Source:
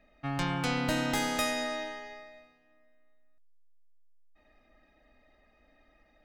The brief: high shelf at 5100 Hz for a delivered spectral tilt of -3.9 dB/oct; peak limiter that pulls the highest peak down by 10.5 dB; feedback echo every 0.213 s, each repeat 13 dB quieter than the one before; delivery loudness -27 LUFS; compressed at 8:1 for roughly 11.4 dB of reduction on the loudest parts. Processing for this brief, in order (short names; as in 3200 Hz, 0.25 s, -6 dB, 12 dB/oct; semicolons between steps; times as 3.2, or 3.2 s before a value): high shelf 5100 Hz +3 dB; compressor 8:1, threshold -38 dBFS; limiter -35.5 dBFS; feedback echo 0.213 s, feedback 22%, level -13 dB; gain +18 dB